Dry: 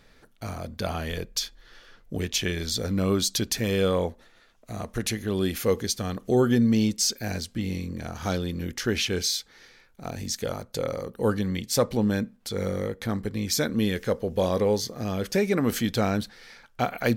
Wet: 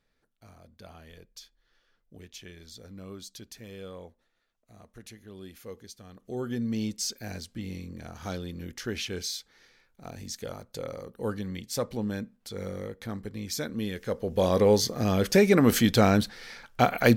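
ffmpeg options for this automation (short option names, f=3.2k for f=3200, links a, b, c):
-af "volume=4dB,afade=t=in:st=6.1:d=0.79:silence=0.266073,afade=t=in:st=14.01:d=0.84:silence=0.266073"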